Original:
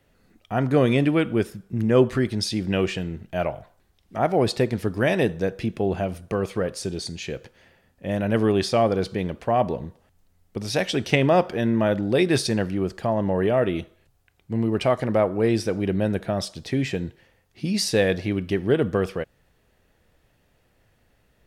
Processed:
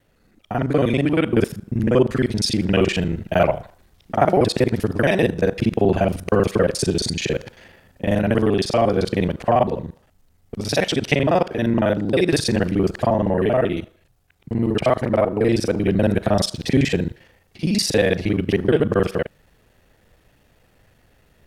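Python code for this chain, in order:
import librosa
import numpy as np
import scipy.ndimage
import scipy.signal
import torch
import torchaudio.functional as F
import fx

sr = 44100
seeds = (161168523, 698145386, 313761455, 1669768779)

y = fx.local_reverse(x, sr, ms=39.0)
y = fx.rider(y, sr, range_db=5, speed_s=0.5)
y = y * 10.0 ** (4.5 / 20.0)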